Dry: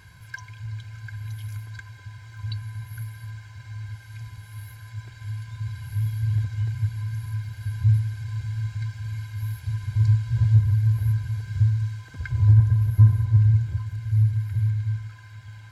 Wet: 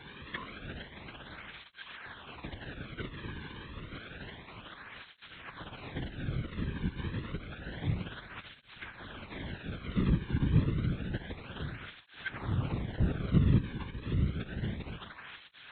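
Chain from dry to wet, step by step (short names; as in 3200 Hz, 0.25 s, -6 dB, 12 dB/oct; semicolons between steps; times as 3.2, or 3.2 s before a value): minimum comb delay 8.9 ms; dynamic EQ 190 Hz, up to -7 dB, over -34 dBFS, Q 0.82; in parallel at -5 dB: requantised 6-bit, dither triangular; on the sum: LPC vocoder at 8 kHz whisper; tape flanging out of phase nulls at 0.29 Hz, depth 1.6 ms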